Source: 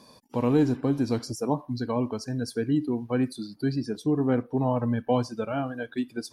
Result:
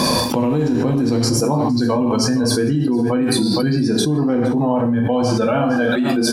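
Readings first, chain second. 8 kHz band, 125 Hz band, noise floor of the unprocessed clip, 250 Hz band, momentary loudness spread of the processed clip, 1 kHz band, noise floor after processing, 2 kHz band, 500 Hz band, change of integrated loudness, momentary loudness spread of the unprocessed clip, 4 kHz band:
+19.5 dB, +9.5 dB, −56 dBFS, +10.0 dB, 1 LU, +10.5 dB, −19 dBFS, +13.5 dB, +9.5 dB, +10.0 dB, 7 LU, +19.0 dB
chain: single-tap delay 464 ms −16 dB
reverb whose tail is shaped and stops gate 200 ms falling, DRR 2 dB
envelope flattener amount 100%
level −1 dB

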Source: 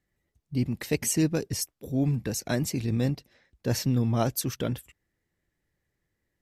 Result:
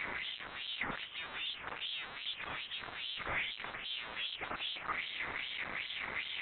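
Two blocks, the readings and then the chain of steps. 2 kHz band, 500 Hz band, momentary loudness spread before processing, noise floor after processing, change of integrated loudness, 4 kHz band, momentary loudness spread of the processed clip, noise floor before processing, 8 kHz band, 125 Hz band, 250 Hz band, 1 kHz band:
+4.5 dB, −18.5 dB, 8 LU, −49 dBFS, −10.5 dB, +2.5 dB, 4 LU, −81 dBFS, below −40 dB, −29.5 dB, −26.5 dB, −2.5 dB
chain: sign of each sample alone
auto-filter band-pass sine 2.5 Hz 790–3,100 Hz
voice inversion scrambler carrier 4,000 Hz
level +1 dB

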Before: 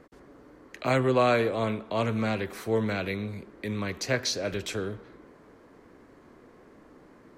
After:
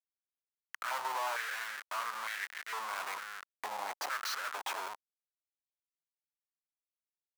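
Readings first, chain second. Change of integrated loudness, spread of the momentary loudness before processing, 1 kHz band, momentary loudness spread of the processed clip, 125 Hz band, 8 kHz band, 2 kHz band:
−9.5 dB, 12 LU, −4.0 dB, 8 LU, below −40 dB, −5.5 dB, −4.0 dB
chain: comparator with hysteresis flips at −34.5 dBFS
high-pass on a step sequencer 2.2 Hz 840–1,800 Hz
level −7 dB

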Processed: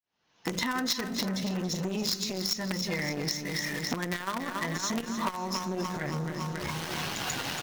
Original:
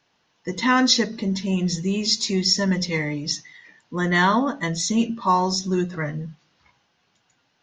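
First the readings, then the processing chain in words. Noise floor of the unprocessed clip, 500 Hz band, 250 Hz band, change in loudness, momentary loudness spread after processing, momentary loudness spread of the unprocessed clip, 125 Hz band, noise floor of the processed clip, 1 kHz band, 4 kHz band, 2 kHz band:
−68 dBFS, −8.0 dB, −10.0 dB, −9.5 dB, 4 LU, 11 LU, −8.0 dB, −66 dBFS, −10.5 dB, −8.0 dB, −7.5 dB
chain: fade in at the beginning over 1.16 s
camcorder AGC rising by 29 dB per second
in parallel at −5 dB: log-companded quantiser 2 bits
on the sum: dynamic equaliser 1,400 Hz, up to +4 dB, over −28 dBFS, Q 1.1
on a send: repeating echo 280 ms, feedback 59%, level −10 dB
on the sum: downward compressor 6 to 1, threshold −27 dBFS, peak gain reduction 21 dB
saturating transformer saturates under 1,500 Hz

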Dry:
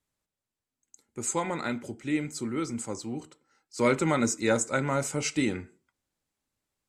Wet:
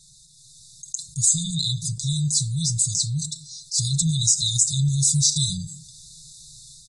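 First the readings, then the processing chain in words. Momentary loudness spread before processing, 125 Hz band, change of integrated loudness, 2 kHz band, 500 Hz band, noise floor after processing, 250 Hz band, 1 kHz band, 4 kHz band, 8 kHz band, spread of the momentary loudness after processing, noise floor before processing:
12 LU, +13.5 dB, +8.0 dB, below −40 dB, below −40 dB, −52 dBFS, −1.5 dB, below −40 dB, +17.0 dB, +15.0 dB, 14 LU, below −85 dBFS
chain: low-shelf EQ 87 Hz −10 dB
comb filter 5.7 ms, depth 83%
brickwall limiter −19 dBFS, peak gain reduction 10 dB
automatic gain control gain up to 16 dB
downsampling to 22,050 Hz
linear-phase brick-wall band-stop 160–3,500 Hz
envelope flattener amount 50%
level −3 dB

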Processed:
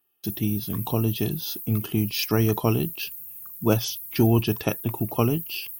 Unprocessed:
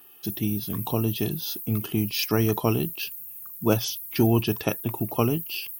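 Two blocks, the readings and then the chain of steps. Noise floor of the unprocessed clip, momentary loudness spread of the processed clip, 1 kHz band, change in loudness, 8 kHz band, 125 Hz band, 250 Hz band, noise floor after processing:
−42 dBFS, 8 LU, 0.0 dB, +1.0 dB, 0.0 dB, +2.5 dB, +1.0 dB, −42 dBFS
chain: noise gate with hold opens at −34 dBFS
low-shelf EQ 120 Hz +4.5 dB

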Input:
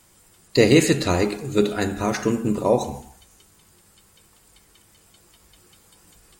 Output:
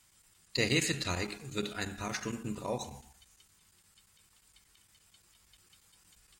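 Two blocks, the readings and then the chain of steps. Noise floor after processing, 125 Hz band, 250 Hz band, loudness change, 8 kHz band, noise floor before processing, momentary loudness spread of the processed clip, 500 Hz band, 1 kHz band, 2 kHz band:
−68 dBFS, −13.0 dB, −16.5 dB, −13.5 dB, −8.0 dB, −57 dBFS, 10 LU, −18.0 dB, −13.5 dB, −8.0 dB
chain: guitar amp tone stack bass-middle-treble 5-5-5
square-wave tremolo 8.6 Hz, depth 60%, duty 90%
high-shelf EQ 7,100 Hz −8.5 dB
level +2.5 dB

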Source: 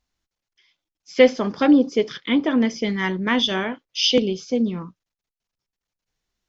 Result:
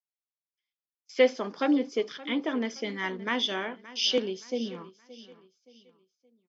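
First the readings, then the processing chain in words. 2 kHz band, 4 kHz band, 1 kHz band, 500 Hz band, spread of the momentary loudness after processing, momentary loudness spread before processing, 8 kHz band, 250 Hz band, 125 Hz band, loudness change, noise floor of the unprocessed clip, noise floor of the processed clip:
−7.0 dB, −7.0 dB, −7.0 dB, −7.5 dB, 11 LU, 9 LU, can't be measured, −11.0 dB, below −10 dB, −8.5 dB, below −85 dBFS, below −85 dBFS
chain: high-pass filter 290 Hz 12 dB per octave
noise gate with hold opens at −33 dBFS
on a send: repeating echo 572 ms, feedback 38%, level −18 dB
on the sum: level −7 dB

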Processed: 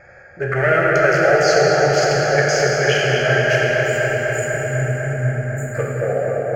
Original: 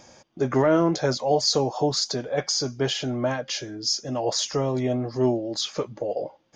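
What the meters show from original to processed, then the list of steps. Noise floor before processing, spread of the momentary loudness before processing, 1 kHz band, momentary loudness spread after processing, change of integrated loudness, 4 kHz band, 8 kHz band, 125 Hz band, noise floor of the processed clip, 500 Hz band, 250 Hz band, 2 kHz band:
−54 dBFS, 9 LU, +8.5 dB, 8 LU, +7.5 dB, +0.5 dB, +2.0 dB, +10.0 dB, −43 dBFS, +8.5 dB, −1.0 dB, +20.5 dB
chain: adaptive Wiener filter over 15 samples
time-frequency box erased 0:03.56–0:05.74, 310–6,800 Hz
flat-topped bell 2,300 Hz +13.5 dB
in parallel at +0.5 dB: brickwall limiter −22 dBFS, peak gain reduction 17.5 dB
on the sum: phaser with its sweep stopped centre 1,000 Hz, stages 6
on a send: bucket-brigade delay 249 ms, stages 4,096, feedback 83%, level −5.5 dB
on the sum: dense smooth reverb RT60 3.9 s, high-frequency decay 0.9×, DRR −3.5 dB
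level +1 dB

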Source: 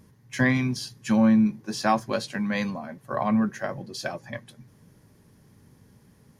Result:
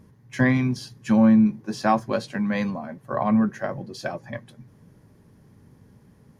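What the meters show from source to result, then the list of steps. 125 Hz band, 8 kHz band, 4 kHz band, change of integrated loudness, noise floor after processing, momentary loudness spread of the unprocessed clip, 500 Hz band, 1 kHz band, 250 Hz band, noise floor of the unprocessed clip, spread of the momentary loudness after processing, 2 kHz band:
+3.0 dB, can't be measured, −3.5 dB, +2.5 dB, −56 dBFS, 16 LU, +2.5 dB, +2.0 dB, +3.0 dB, −58 dBFS, 17 LU, −0.5 dB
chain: high-shelf EQ 2,200 Hz −8.5 dB
level +3 dB

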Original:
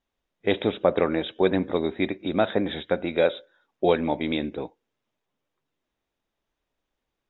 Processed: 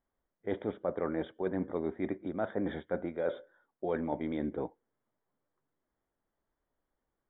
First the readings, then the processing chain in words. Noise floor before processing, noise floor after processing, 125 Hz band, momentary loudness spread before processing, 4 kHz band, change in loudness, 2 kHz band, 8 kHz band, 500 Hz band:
−83 dBFS, below −85 dBFS, −9.0 dB, 7 LU, −23.0 dB, −10.5 dB, −13.5 dB, can't be measured, −11.0 dB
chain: reversed playback
downward compressor 5 to 1, threshold −28 dBFS, peak gain reduction 13 dB
reversed playback
Savitzky-Golay smoothing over 41 samples
level −2 dB

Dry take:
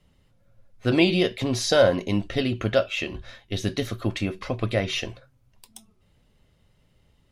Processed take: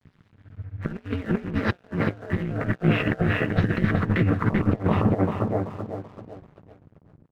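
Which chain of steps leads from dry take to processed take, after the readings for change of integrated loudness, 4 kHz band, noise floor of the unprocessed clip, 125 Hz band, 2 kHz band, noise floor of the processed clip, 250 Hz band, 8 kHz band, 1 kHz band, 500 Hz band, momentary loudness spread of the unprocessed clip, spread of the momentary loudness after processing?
−0.5 dB, −12.0 dB, −64 dBFS, +6.0 dB, +0.5 dB, −61 dBFS, +2.5 dB, below −20 dB, +3.5 dB, −4.5 dB, 11 LU, 13 LU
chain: variable-slope delta modulation 32 kbit/s
parametric band 1,400 Hz +4.5 dB 1.4 octaves
double-tracking delay 15 ms −3 dB
low-pass filter sweep 1,800 Hz → 320 Hz, 0:04.03–0:06.55
ring modulation 95 Hz
tape delay 386 ms, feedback 47%, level −4 dB, low-pass 2,300 Hz
compressor whose output falls as the input rises −30 dBFS, ratio −0.5
dead-zone distortion −52.5 dBFS
parametric band 130 Hz +14.5 dB 2.1 octaves

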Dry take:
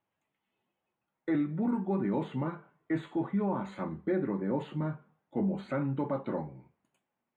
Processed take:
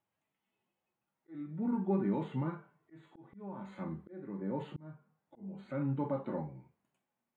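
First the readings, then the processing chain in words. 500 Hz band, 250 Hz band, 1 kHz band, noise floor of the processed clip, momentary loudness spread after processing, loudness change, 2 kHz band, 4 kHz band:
−6.0 dB, −6.0 dB, −5.5 dB, below −85 dBFS, 18 LU, −4.5 dB, −10.0 dB, can't be measured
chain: harmonic and percussive parts rebalanced percussive −9 dB
volume swells 603 ms

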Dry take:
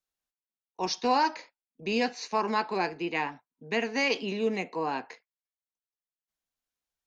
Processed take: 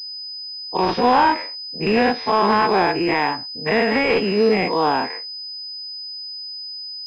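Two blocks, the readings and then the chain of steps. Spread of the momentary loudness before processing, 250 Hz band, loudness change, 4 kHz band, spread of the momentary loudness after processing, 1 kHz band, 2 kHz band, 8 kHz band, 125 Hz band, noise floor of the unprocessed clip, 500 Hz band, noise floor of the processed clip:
10 LU, +11.5 dB, +9.5 dB, +12.5 dB, 13 LU, +11.5 dB, +10.0 dB, can't be measured, +13.5 dB, below −85 dBFS, +12.0 dB, −33 dBFS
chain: every bin's largest magnitude spread in time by 120 ms
in parallel at +2 dB: brickwall limiter −17.5 dBFS, peak gain reduction 8.5 dB
on the sum: gain into a clipping stage and back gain 10.5 dB
low-pass that shuts in the quiet parts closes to 830 Hz, open at −17 dBFS
switching amplifier with a slow clock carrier 5,000 Hz
level +2 dB

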